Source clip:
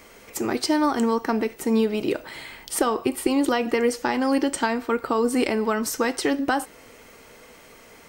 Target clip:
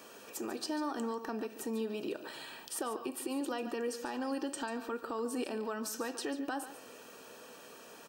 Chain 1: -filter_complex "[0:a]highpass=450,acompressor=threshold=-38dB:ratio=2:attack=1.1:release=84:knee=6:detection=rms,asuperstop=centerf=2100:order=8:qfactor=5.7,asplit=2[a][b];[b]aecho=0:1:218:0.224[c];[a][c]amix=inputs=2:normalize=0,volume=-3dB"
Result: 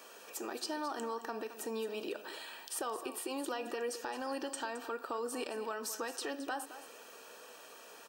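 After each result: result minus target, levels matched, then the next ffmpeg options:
echo 75 ms late; 250 Hz band -4.5 dB
-filter_complex "[0:a]highpass=450,acompressor=threshold=-38dB:ratio=2:attack=1.1:release=84:knee=6:detection=rms,asuperstop=centerf=2100:order=8:qfactor=5.7,asplit=2[a][b];[b]aecho=0:1:143:0.224[c];[a][c]amix=inputs=2:normalize=0,volume=-3dB"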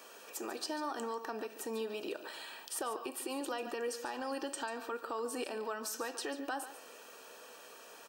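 250 Hz band -4.5 dB
-filter_complex "[0:a]highpass=200,acompressor=threshold=-38dB:ratio=2:attack=1.1:release=84:knee=6:detection=rms,asuperstop=centerf=2100:order=8:qfactor=5.7,asplit=2[a][b];[b]aecho=0:1:143:0.224[c];[a][c]amix=inputs=2:normalize=0,volume=-3dB"

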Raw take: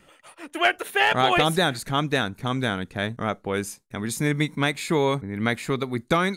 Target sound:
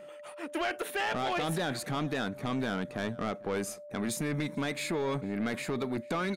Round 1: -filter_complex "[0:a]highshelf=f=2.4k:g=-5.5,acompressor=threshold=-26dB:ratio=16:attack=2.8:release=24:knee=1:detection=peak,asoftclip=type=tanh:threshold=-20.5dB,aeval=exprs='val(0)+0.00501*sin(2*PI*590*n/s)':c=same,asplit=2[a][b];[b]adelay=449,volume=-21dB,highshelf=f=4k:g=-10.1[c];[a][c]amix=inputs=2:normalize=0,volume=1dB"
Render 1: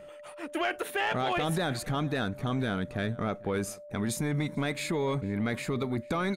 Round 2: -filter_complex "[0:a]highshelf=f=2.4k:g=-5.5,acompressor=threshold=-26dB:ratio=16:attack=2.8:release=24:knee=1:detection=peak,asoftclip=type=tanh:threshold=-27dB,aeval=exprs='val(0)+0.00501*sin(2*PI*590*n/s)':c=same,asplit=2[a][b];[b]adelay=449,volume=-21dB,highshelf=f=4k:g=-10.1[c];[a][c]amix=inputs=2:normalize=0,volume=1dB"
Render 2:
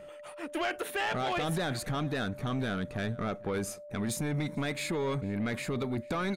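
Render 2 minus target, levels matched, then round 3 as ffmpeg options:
125 Hz band +3.0 dB
-filter_complex "[0:a]highpass=160,highshelf=f=2.4k:g=-5.5,acompressor=threshold=-26dB:ratio=16:attack=2.8:release=24:knee=1:detection=peak,asoftclip=type=tanh:threshold=-27dB,aeval=exprs='val(0)+0.00501*sin(2*PI*590*n/s)':c=same,asplit=2[a][b];[b]adelay=449,volume=-21dB,highshelf=f=4k:g=-10.1[c];[a][c]amix=inputs=2:normalize=0,volume=1dB"

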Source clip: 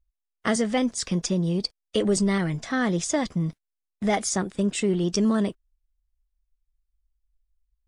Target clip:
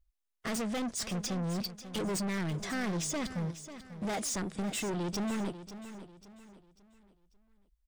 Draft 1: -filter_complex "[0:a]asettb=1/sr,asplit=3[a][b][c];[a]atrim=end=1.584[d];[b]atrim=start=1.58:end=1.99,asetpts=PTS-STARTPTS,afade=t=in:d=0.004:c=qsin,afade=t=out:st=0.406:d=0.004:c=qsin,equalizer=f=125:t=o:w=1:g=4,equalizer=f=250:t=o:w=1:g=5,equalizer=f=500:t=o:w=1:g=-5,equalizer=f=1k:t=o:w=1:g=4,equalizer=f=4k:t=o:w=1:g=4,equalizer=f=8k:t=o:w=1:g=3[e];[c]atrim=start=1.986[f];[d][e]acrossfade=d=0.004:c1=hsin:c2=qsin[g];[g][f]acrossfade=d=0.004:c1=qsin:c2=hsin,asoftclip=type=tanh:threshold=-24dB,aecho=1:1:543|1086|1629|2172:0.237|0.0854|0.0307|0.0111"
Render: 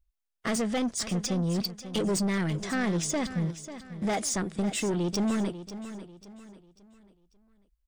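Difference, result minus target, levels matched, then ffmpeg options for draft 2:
soft clip: distortion -5 dB
-filter_complex "[0:a]asettb=1/sr,asplit=3[a][b][c];[a]atrim=end=1.584[d];[b]atrim=start=1.58:end=1.99,asetpts=PTS-STARTPTS,afade=t=in:d=0.004:c=qsin,afade=t=out:st=0.406:d=0.004:c=qsin,equalizer=f=125:t=o:w=1:g=4,equalizer=f=250:t=o:w=1:g=5,equalizer=f=500:t=o:w=1:g=-5,equalizer=f=1k:t=o:w=1:g=4,equalizer=f=4k:t=o:w=1:g=4,equalizer=f=8k:t=o:w=1:g=3[e];[c]atrim=start=1.986[f];[d][e]acrossfade=d=0.004:c1=hsin:c2=qsin[g];[g][f]acrossfade=d=0.004:c1=qsin:c2=hsin,asoftclip=type=tanh:threshold=-32dB,aecho=1:1:543|1086|1629|2172:0.237|0.0854|0.0307|0.0111"

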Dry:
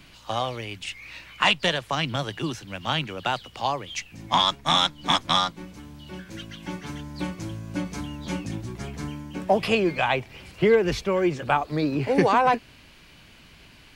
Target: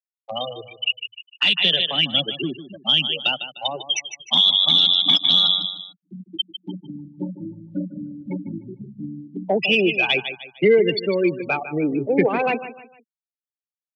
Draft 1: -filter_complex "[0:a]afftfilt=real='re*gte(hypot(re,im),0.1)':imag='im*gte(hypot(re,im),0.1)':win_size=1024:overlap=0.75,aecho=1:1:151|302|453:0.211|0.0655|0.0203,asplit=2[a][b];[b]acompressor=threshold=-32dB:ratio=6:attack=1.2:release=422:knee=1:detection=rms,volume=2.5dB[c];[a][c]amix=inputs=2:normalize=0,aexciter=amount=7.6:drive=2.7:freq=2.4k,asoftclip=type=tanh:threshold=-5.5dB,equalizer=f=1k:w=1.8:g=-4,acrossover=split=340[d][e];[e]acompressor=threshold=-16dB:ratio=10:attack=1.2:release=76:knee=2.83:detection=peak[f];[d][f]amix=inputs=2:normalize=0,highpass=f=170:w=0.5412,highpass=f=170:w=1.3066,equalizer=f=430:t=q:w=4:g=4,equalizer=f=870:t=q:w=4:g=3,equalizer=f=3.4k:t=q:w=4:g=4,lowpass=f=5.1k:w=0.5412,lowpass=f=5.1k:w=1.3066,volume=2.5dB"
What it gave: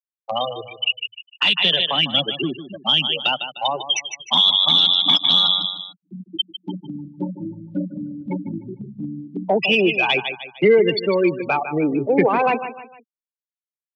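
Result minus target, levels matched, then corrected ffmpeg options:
compressor: peak gain reduction -7.5 dB; 1000 Hz band +5.5 dB
-filter_complex "[0:a]afftfilt=real='re*gte(hypot(re,im),0.1)':imag='im*gte(hypot(re,im),0.1)':win_size=1024:overlap=0.75,aecho=1:1:151|302|453:0.211|0.0655|0.0203,asplit=2[a][b];[b]acompressor=threshold=-41dB:ratio=6:attack=1.2:release=422:knee=1:detection=rms,volume=2.5dB[c];[a][c]amix=inputs=2:normalize=0,aexciter=amount=7.6:drive=2.7:freq=2.4k,asoftclip=type=tanh:threshold=-5.5dB,equalizer=f=1k:w=1.8:g=-14,acrossover=split=340[d][e];[e]acompressor=threshold=-16dB:ratio=10:attack=1.2:release=76:knee=2.83:detection=peak[f];[d][f]amix=inputs=2:normalize=0,highpass=f=170:w=0.5412,highpass=f=170:w=1.3066,equalizer=f=430:t=q:w=4:g=4,equalizer=f=870:t=q:w=4:g=3,equalizer=f=3.4k:t=q:w=4:g=4,lowpass=f=5.1k:w=0.5412,lowpass=f=5.1k:w=1.3066,volume=2.5dB"

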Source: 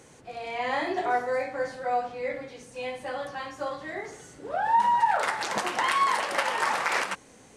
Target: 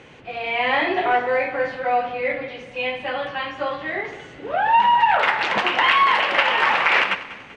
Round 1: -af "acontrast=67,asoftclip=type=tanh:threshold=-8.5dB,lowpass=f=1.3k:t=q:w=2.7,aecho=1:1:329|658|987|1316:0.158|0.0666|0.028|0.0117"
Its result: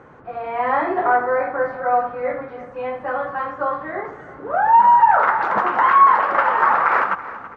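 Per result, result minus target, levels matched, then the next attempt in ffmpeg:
echo 0.135 s late; 2000 Hz band -5.5 dB
-af "acontrast=67,asoftclip=type=tanh:threshold=-8.5dB,lowpass=f=1.3k:t=q:w=2.7,aecho=1:1:194|388|582|776:0.158|0.0666|0.028|0.0117"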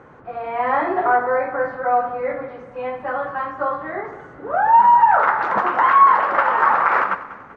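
2000 Hz band -5.5 dB
-af "acontrast=67,asoftclip=type=tanh:threshold=-8.5dB,lowpass=f=2.8k:t=q:w=2.7,aecho=1:1:194|388|582|776:0.158|0.0666|0.028|0.0117"

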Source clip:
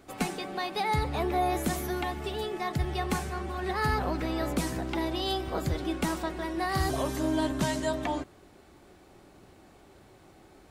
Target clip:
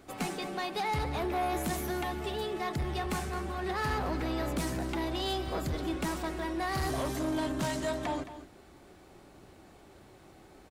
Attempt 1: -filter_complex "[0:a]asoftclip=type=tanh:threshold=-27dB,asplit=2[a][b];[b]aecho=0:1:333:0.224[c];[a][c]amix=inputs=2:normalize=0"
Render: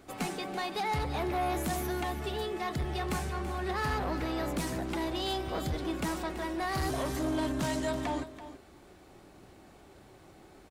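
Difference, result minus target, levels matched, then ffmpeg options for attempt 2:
echo 0.115 s late
-filter_complex "[0:a]asoftclip=type=tanh:threshold=-27dB,asplit=2[a][b];[b]aecho=0:1:218:0.224[c];[a][c]amix=inputs=2:normalize=0"

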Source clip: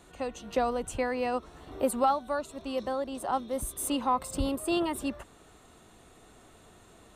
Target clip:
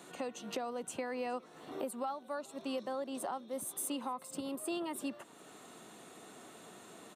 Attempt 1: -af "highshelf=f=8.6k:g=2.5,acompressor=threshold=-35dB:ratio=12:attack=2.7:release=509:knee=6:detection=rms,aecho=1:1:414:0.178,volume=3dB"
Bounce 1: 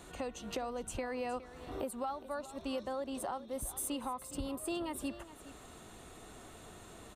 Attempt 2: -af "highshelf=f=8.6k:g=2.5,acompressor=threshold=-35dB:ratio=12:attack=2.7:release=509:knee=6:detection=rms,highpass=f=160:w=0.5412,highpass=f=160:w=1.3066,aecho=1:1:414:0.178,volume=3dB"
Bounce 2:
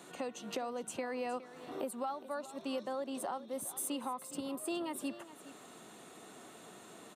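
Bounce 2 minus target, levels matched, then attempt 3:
echo-to-direct +10.5 dB
-af "highshelf=f=8.6k:g=2.5,acompressor=threshold=-35dB:ratio=12:attack=2.7:release=509:knee=6:detection=rms,highpass=f=160:w=0.5412,highpass=f=160:w=1.3066,aecho=1:1:414:0.0531,volume=3dB"

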